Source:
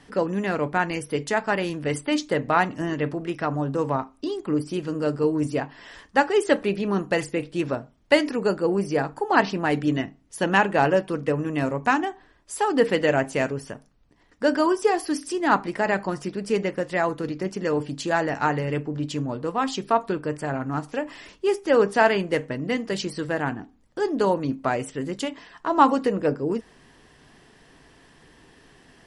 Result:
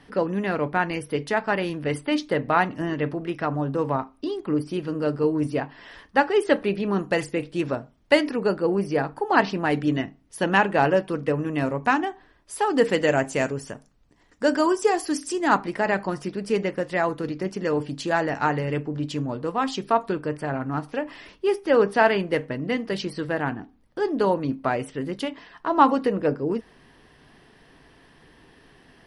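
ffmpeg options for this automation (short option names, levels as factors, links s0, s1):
-af "asetnsamples=n=441:p=0,asendcmd='6.99 equalizer g -3.5;8.2 equalizer g -13;9.26 equalizer g -6.5;12.72 equalizer g 5.5;15.57 equalizer g -4.5;20.28 equalizer g -13',equalizer=f=7200:t=o:w=0.49:g=-13.5"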